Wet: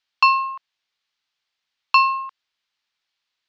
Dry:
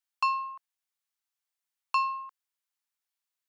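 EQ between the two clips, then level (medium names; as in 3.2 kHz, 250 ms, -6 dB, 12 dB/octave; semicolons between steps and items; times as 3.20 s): low-pass 4.4 kHz 24 dB/octave; treble shelf 2.3 kHz +12 dB; +8.5 dB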